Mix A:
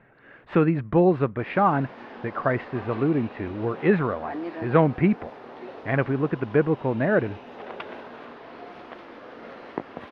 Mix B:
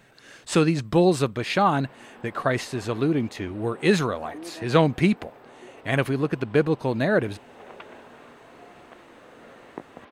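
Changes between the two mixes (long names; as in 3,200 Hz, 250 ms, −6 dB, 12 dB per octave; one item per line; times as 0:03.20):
speech: remove low-pass filter 2,100 Hz 24 dB per octave
background −6.5 dB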